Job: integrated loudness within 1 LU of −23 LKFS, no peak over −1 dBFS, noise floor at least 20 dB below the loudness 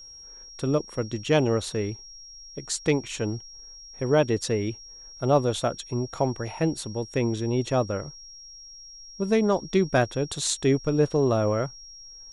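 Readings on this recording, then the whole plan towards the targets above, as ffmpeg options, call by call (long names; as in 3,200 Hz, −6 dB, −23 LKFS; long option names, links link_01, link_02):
interfering tone 5,600 Hz; level of the tone −43 dBFS; integrated loudness −26.0 LKFS; sample peak −7.0 dBFS; target loudness −23.0 LKFS
→ -af "bandreject=frequency=5600:width=30"
-af "volume=3dB"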